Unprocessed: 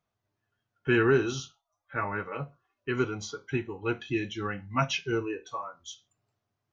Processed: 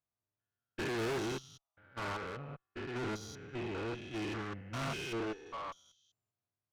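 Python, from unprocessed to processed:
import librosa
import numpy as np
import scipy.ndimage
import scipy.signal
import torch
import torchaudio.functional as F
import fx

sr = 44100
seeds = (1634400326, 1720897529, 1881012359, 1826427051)

y = fx.spec_steps(x, sr, hold_ms=200)
y = fx.tube_stage(y, sr, drive_db=41.0, bias=0.5)
y = fx.upward_expand(y, sr, threshold_db=-53.0, expansion=2.5)
y = y * 10.0 ** (7.5 / 20.0)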